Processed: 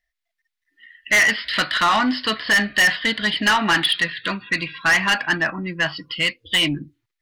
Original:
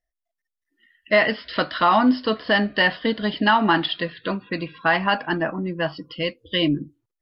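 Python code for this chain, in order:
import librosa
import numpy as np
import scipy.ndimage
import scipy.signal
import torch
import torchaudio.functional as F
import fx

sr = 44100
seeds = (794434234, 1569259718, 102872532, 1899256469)

y = fx.graphic_eq(x, sr, hz=(250, 500, 2000, 4000), db=(-3, -7, 11, 7))
y = 10.0 ** (-13.5 / 20.0) * np.tanh(y / 10.0 ** (-13.5 / 20.0))
y = y * librosa.db_to_amplitude(1.5)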